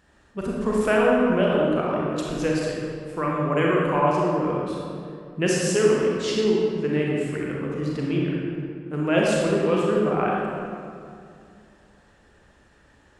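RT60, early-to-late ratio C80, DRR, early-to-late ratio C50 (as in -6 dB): 2.3 s, 0.0 dB, -4.0 dB, -2.5 dB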